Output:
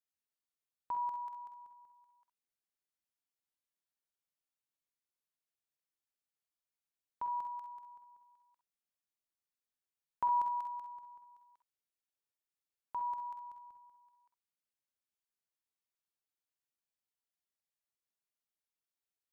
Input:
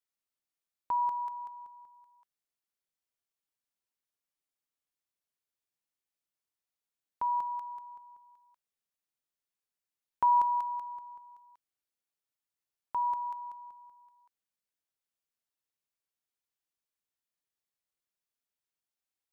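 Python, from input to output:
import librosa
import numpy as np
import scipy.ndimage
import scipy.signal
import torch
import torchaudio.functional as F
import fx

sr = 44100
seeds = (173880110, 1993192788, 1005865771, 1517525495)

y = fx.low_shelf(x, sr, hz=170.0, db=9.5, at=(13.23, 13.86), fade=0.02)
y = fx.room_early_taps(y, sr, ms=(48, 64), db=(-9.0, -9.5))
y = F.gain(torch.from_numpy(y), -6.5).numpy()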